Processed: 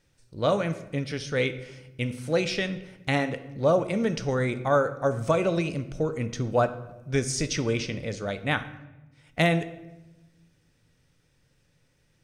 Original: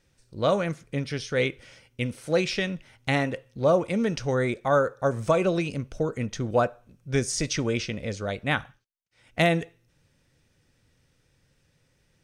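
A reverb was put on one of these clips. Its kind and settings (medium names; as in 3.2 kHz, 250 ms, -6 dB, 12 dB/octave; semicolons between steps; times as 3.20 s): simulated room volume 450 m³, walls mixed, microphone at 0.38 m; trim -1 dB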